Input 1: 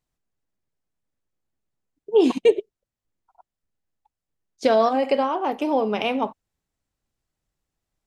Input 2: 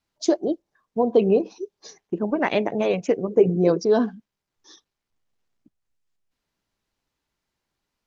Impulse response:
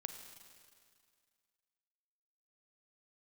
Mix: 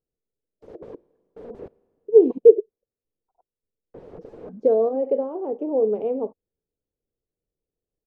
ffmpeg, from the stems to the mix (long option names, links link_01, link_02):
-filter_complex "[0:a]highshelf=frequency=5800:gain=10,volume=-7dB,asplit=2[link_01][link_02];[1:a]agate=range=-33dB:threshold=-44dB:ratio=3:detection=peak,acompressor=threshold=-23dB:ratio=12,aeval=exprs='(mod(59.6*val(0)+1,2)-1)/59.6':channel_layout=same,adelay=400,volume=1dB,asplit=3[link_03][link_04][link_05];[link_03]atrim=end=1.68,asetpts=PTS-STARTPTS,afade=type=out:start_time=1.676:duration=0.004:curve=hsin[link_06];[link_04]atrim=start=1.68:end=3.94,asetpts=PTS-STARTPTS,volume=0[link_07];[link_05]atrim=start=3.94,asetpts=PTS-STARTPTS,afade=type=in:duration=0.004:curve=hsin[link_08];[link_06][link_07][link_08]concat=n=3:v=0:a=1,asplit=2[link_09][link_10];[link_10]volume=-12dB[link_11];[link_02]apad=whole_len=373224[link_12];[link_09][link_12]sidechaincompress=threshold=-38dB:ratio=8:attack=37:release=1450[link_13];[2:a]atrim=start_sample=2205[link_14];[link_11][link_14]afir=irnorm=-1:irlink=0[link_15];[link_01][link_13][link_15]amix=inputs=3:normalize=0,lowpass=frequency=460:width_type=q:width=4.9,aemphasis=mode=production:type=75fm"